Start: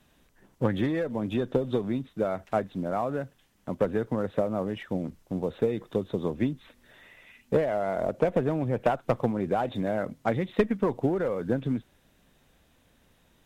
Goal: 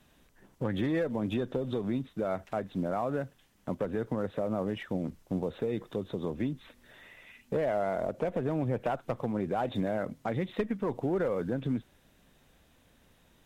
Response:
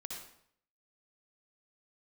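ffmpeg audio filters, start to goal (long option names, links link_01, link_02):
-af "alimiter=limit=-22dB:level=0:latency=1:release=120"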